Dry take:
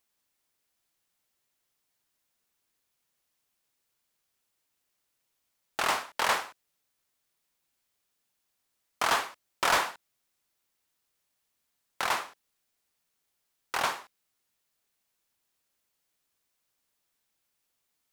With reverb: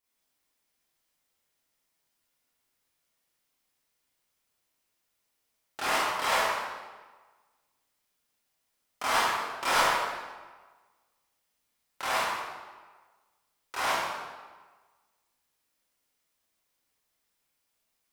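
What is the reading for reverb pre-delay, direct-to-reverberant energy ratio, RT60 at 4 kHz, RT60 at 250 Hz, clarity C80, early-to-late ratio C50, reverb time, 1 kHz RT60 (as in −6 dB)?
24 ms, −11.5 dB, 1.0 s, 1.3 s, 0.0 dB, −3.5 dB, 1.4 s, 1.4 s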